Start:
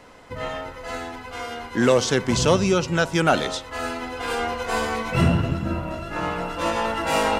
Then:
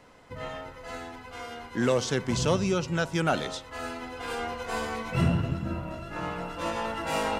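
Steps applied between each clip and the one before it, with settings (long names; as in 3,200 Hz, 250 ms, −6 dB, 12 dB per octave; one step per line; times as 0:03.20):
parametric band 140 Hz +3.5 dB 1 octave
level −7.5 dB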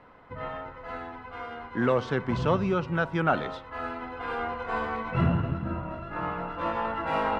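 drawn EQ curve 580 Hz 0 dB, 1,200 Hz +5 dB, 3,900 Hz −9 dB, 6,800 Hz −24 dB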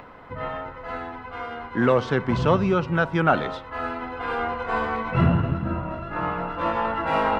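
upward compression, threshold −44 dBFS
level +5 dB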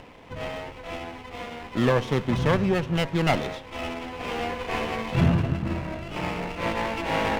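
lower of the sound and its delayed copy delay 0.31 ms
level −1 dB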